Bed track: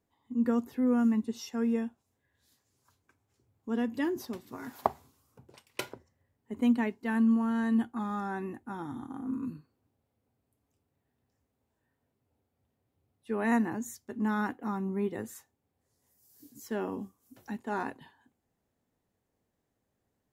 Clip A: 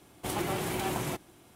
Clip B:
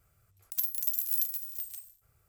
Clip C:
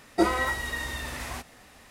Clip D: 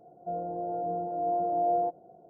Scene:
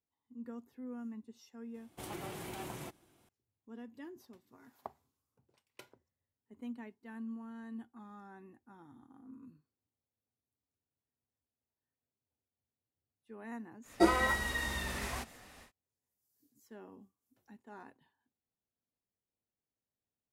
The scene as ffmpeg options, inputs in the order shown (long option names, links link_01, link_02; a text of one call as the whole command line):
ffmpeg -i bed.wav -i cue0.wav -i cue1.wav -i cue2.wav -filter_complex "[0:a]volume=-18dB[link_01];[1:a]atrim=end=1.55,asetpts=PTS-STARTPTS,volume=-11.5dB,afade=type=in:duration=0.004:curve=hsin,afade=type=out:start_time=1.546:duration=0.004:curve=hsin,adelay=1740[link_02];[3:a]atrim=end=1.9,asetpts=PTS-STARTPTS,volume=-3.5dB,afade=type=in:duration=0.1,afade=type=out:start_time=1.8:duration=0.1,adelay=13820[link_03];[link_01][link_02][link_03]amix=inputs=3:normalize=0" out.wav